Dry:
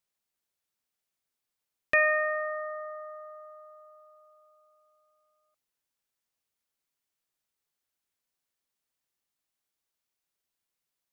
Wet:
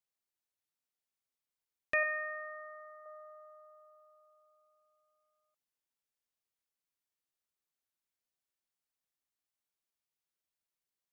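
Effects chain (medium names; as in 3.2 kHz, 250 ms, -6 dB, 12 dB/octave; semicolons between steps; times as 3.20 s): 2.03–3.06 s: graphic EQ with 31 bands 630 Hz -6 dB, 1 kHz -12 dB, 3.15 kHz -10 dB; trim -7.5 dB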